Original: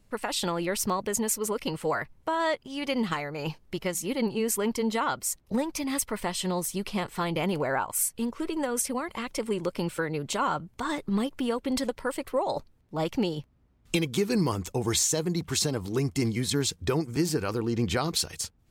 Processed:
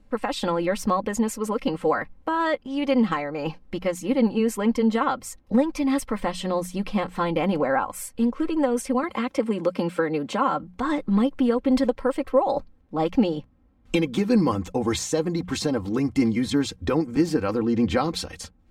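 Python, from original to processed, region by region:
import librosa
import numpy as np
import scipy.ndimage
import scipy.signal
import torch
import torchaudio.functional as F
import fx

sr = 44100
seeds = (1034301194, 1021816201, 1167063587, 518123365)

y = fx.chain(x, sr, fx.highpass(hz=120.0, slope=12),
    fx.band_squash(depth_pct=40), at=(9.03, 10.63))
y = fx.lowpass(y, sr, hz=1600.0, slope=6)
y = fx.hum_notches(y, sr, base_hz=60, count=3)
y = y + 0.59 * np.pad(y, (int(3.8 * sr / 1000.0), 0))[:len(y)]
y = y * 10.0 ** (5.0 / 20.0)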